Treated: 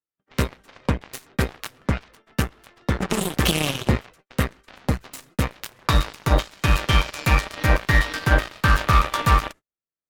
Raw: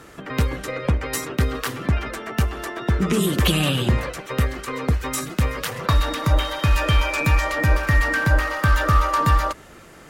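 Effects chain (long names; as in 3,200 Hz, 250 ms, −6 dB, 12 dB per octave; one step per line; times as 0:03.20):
noise gate −31 dBFS, range −39 dB
harmonic generator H 6 −29 dB, 7 −16 dB, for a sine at −5 dBFS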